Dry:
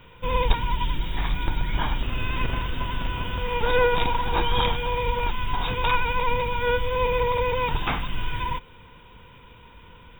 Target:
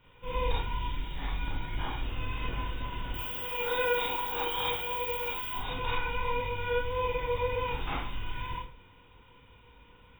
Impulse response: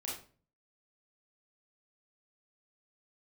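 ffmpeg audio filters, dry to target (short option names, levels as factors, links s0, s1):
-filter_complex "[0:a]asettb=1/sr,asplit=3[s0][s1][s2];[s0]atrim=end=3.144[s3];[s1]atrim=start=3.14:end=5.55,asetpts=PTS-STARTPTS,afade=t=in:d=0.004:c=qsin,afade=t=out:st=2.406:d=0.004:c=qsin,aemphasis=mode=production:type=bsi[s4];[s2]atrim=start=5.546[s5];[s3][s4]acrossfade=d=0.004:c1=hsin:c2=qsin[s6];[s6][s5]acrossfade=d=0.004:c1=qsin:c2=hsin[s7];[1:a]atrim=start_sample=2205[s8];[s7][s8]afir=irnorm=-1:irlink=0,volume=0.376"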